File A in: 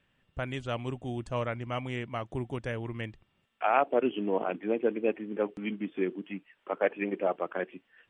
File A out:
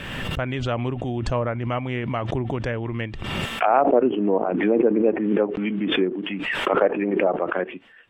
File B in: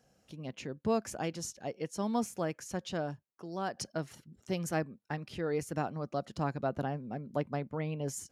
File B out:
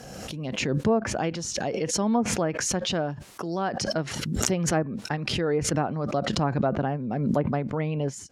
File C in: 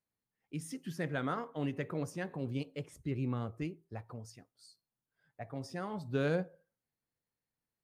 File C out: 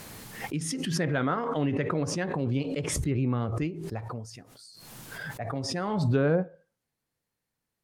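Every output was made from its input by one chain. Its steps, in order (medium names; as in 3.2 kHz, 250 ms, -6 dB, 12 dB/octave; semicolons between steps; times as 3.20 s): low-pass that closes with the level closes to 1.1 kHz, closed at -26 dBFS; swell ahead of each attack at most 29 dB/s; trim +7.5 dB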